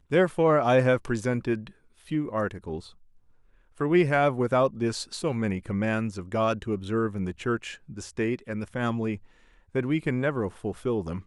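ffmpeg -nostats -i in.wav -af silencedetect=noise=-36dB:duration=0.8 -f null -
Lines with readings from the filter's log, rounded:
silence_start: 2.80
silence_end: 3.78 | silence_duration: 0.98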